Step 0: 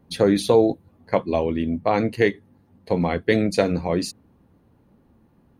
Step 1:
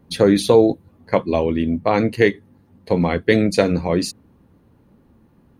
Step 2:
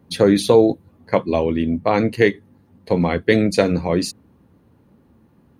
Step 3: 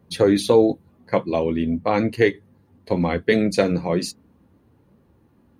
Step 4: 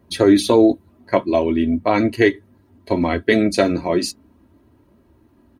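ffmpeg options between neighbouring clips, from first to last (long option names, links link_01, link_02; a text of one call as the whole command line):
ffmpeg -i in.wav -af "equalizer=frequency=730:width=2.8:gain=-3,volume=4dB" out.wav
ffmpeg -i in.wav -af "highpass=55" out.wav
ffmpeg -i in.wav -af "flanger=delay=1.6:depth=4.6:regen=-61:speed=0.4:shape=triangular,volume=1.5dB" out.wav
ffmpeg -i in.wav -af "aecho=1:1:3.1:0.62,volume=2.5dB" out.wav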